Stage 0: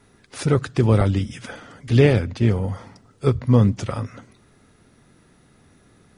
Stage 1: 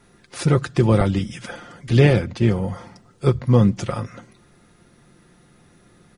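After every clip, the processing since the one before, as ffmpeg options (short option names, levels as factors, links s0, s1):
-af "aecho=1:1:5.7:0.41,volume=1.12"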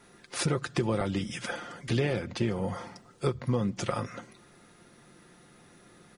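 -af "lowshelf=f=150:g=-11,acompressor=threshold=0.0562:ratio=5"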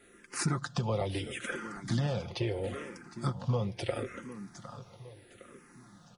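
-filter_complex "[0:a]aecho=1:1:759|1518|2277|3036:0.224|0.101|0.0453|0.0204,asplit=2[s0][s1];[s1]afreqshift=-0.75[s2];[s0][s2]amix=inputs=2:normalize=1"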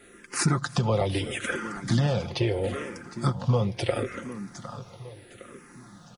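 -af "aecho=1:1:331:0.0708,volume=2.24"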